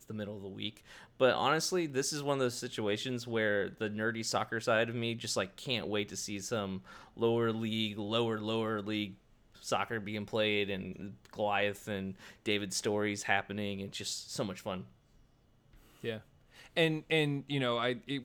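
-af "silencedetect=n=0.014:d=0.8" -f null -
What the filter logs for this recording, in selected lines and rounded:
silence_start: 14.81
silence_end: 16.04 | silence_duration: 1.23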